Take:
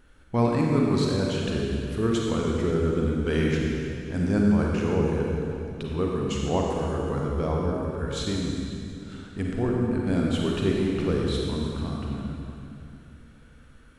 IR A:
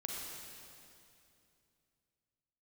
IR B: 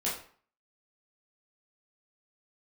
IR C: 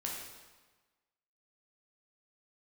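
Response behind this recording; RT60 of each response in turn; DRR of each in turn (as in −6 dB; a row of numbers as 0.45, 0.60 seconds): A; 2.7, 0.50, 1.3 seconds; −2.0, −7.5, −3.0 decibels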